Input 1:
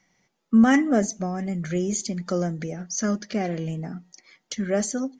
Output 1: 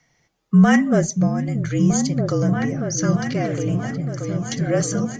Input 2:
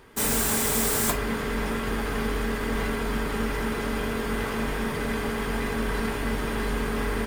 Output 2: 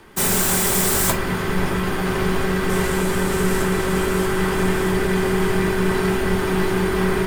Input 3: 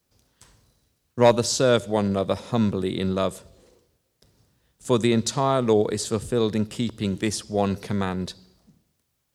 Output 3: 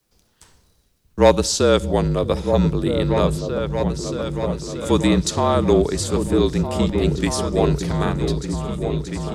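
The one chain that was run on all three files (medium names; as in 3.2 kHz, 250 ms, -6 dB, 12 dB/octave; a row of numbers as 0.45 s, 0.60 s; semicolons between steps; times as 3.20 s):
delay with an opening low-pass 630 ms, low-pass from 200 Hz, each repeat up 2 oct, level -3 dB; frequency shift -41 Hz; normalise loudness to -20 LUFS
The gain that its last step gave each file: +3.5 dB, +5.5 dB, +3.5 dB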